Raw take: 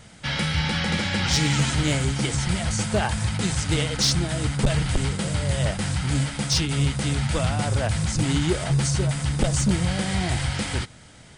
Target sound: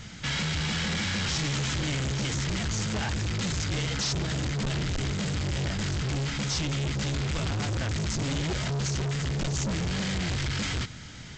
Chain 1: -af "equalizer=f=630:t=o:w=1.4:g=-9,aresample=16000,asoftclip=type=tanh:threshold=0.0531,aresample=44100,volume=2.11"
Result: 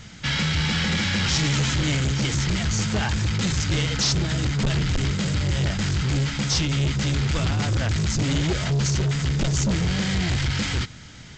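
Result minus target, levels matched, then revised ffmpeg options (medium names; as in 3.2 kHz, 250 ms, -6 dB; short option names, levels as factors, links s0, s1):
saturation: distortion -5 dB
-af "equalizer=f=630:t=o:w=1.4:g=-9,aresample=16000,asoftclip=type=tanh:threshold=0.02,aresample=44100,volume=2.11"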